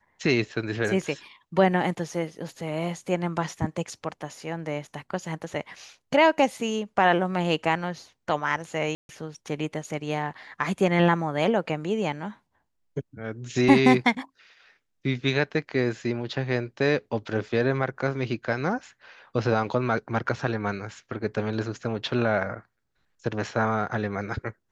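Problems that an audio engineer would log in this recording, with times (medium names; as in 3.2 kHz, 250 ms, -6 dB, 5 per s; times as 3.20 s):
8.95–9.09 s: dropout 141 ms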